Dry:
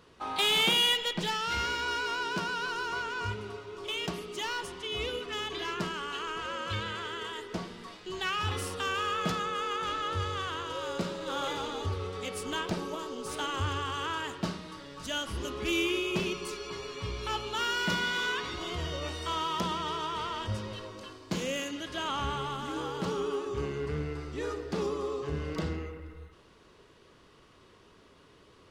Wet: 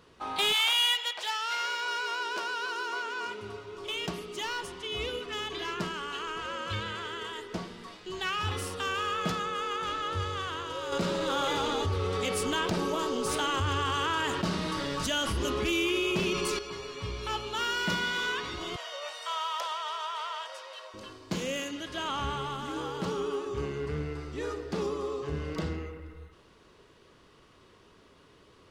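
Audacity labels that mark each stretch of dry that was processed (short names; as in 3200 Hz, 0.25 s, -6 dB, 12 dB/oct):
0.520000	3.410000	HPF 810 Hz -> 240 Hz 24 dB/oct
10.920000	16.590000	fast leveller amount 70%
18.760000	20.940000	elliptic high-pass 570 Hz, stop band 80 dB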